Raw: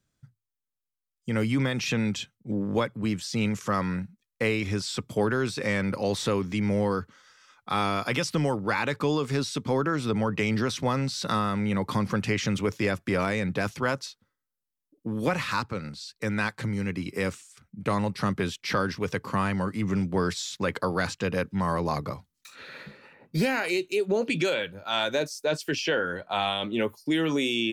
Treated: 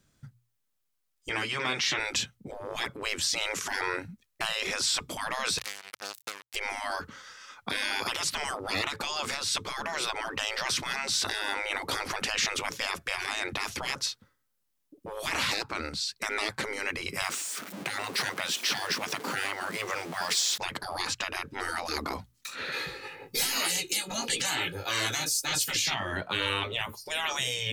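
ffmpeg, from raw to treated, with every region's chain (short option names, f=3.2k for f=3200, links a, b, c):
-filter_complex "[0:a]asettb=1/sr,asplit=3[a][b][c];[a]atrim=end=1.294[d];[b]atrim=start=1.29:end=2,asetpts=PTS-STARTPTS,afade=t=in:d=0.004:c=qsin,afade=t=out:st=0.706:d=0.004:c=qsin,bandpass=f=2.1k:t=q:w=0.53,asplit=2[e][f];[f]adelay=13,volume=-7dB[g];[e][g]amix=inputs=2:normalize=0,atrim=end_sample=31311[h];[c]atrim=start=1.996[i];[d][h]acrossfade=d=0.004:c1=hsin:c2=qsin[j];[j][i]acrossfade=d=0.004:c1=qsin:c2=hsin,asettb=1/sr,asplit=3[k][l][m];[k]atrim=end=5.584[n];[l]atrim=start=5.58:end=6.56,asetpts=PTS-STARTPTS,afade=t=in:d=0.004:c=qsin,afade=t=out:st=0.976:d=0.004:c=qsin,acrossover=split=86|650[o][p][q];[o]acompressor=threshold=-49dB:ratio=4[r];[p]acompressor=threshold=-29dB:ratio=4[s];[q]acompressor=threshold=-34dB:ratio=4[t];[r][s][t]amix=inputs=3:normalize=0,acrusher=bits=3:mix=0:aa=0.5,aderivative[u];[m]atrim=start=6.556[v];[n][u]acrossfade=d=0.004:c1=hsin:c2=qsin[w];[w][v]acrossfade=d=0.004:c1=qsin:c2=hsin,asettb=1/sr,asplit=3[x][y][z];[x]atrim=end=17.224[aa];[y]atrim=start=17.22:end=20.58,asetpts=PTS-STARTPTS,afade=t=in:d=0.004:c=qsin,afade=t=out:st=3.356:d=0.004:c=qsin,aeval=exprs='val(0)+0.5*0.00841*sgn(val(0))':c=same,highpass=f=240:w=0.5412,highpass=f=240:w=1.3066[ab];[z]atrim=start=20.576[ac];[aa][ab]acrossfade=d=0.004:c1=hsin:c2=qsin[ad];[ad][ac]acrossfade=d=0.004:c1=qsin:c2=hsin,asettb=1/sr,asplit=3[ae][af][ag];[ae]atrim=end=22.724[ah];[af]atrim=start=22.72:end=25.94,asetpts=PTS-STARTPTS,afade=t=in:d=0.004:c=qsin,afade=t=out:st=3.216:d=0.004:c=qsin,highshelf=f=3.3k:g=10.5,flanger=delay=16:depth=3.2:speed=1.1,aecho=1:1:2.4:0.86,atrim=end_sample=142002[ai];[ag]atrim=start=25.936[aj];[ah][ai]acrossfade=d=0.004:c1=hsin:c2=qsin[ak];[ak][aj]acrossfade=d=0.004:c1=qsin:c2=hsin,afftfilt=real='re*lt(hypot(re,im),0.0631)':imag='im*lt(hypot(re,im),0.0631)':win_size=1024:overlap=0.75,bandreject=f=60:t=h:w=6,bandreject=f=120:t=h:w=6,alimiter=level_in=1.5dB:limit=-24dB:level=0:latency=1:release=206,volume=-1.5dB,volume=9dB"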